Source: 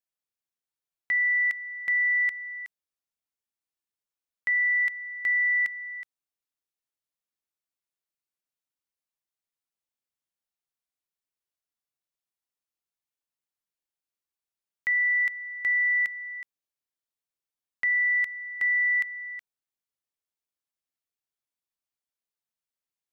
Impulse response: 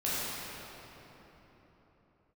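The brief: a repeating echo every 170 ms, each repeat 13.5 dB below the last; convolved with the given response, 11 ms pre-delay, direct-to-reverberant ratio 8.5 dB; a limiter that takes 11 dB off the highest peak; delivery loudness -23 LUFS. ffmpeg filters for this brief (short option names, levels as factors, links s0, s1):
-filter_complex "[0:a]alimiter=level_in=2.37:limit=0.0631:level=0:latency=1,volume=0.422,aecho=1:1:170|340:0.211|0.0444,asplit=2[s0][s1];[1:a]atrim=start_sample=2205,adelay=11[s2];[s1][s2]afir=irnorm=-1:irlink=0,volume=0.133[s3];[s0][s3]amix=inputs=2:normalize=0,volume=4.47"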